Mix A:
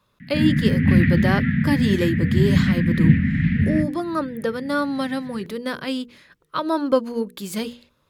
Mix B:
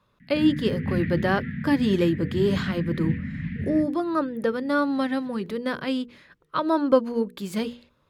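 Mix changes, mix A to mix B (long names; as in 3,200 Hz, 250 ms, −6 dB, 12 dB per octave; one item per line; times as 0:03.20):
speech: add high-shelf EQ 4,500 Hz −10 dB
background −11.5 dB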